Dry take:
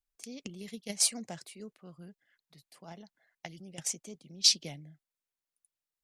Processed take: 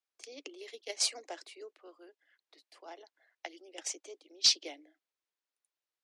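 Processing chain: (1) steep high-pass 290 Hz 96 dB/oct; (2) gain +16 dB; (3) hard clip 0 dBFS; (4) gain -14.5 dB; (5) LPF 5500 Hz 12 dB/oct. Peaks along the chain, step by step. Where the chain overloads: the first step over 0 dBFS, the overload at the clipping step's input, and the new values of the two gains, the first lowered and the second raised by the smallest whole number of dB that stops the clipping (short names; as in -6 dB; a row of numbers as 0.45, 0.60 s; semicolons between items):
-9.0, +7.0, 0.0, -14.5, -14.5 dBFS; step 2, 7.0 dB; step 2 +9 dB, step 4 -7.5 dB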